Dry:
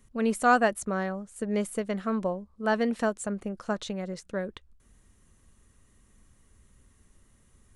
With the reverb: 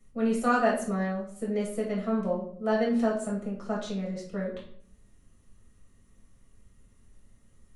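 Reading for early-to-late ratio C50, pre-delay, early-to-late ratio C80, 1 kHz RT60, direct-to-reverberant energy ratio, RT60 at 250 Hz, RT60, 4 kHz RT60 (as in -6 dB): 5.5 dB, 6 ms, 9.5 dB, 0.50 s, -5.0 dB, 0.75 s, 0.60 s, 0.45 s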